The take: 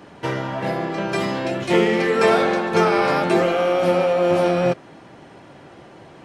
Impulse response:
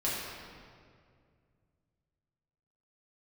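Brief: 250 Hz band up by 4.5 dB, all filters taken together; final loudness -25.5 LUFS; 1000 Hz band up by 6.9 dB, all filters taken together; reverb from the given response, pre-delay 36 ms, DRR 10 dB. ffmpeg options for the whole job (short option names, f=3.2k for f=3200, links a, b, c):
-filter_complex "[0:a]equalizer=f=250:t=o:g=6.5,equalizer=f=1k:t=o:g=9,asplit=2[a][b];[1:a]atrim=start_sample=2205,adelay=36[c];[b][c]afir=irnorm=-1:irlink=0,volume=-17.5dB[d];[a][d]amix=inputs=2:normalize=0,volume=-10.5dB"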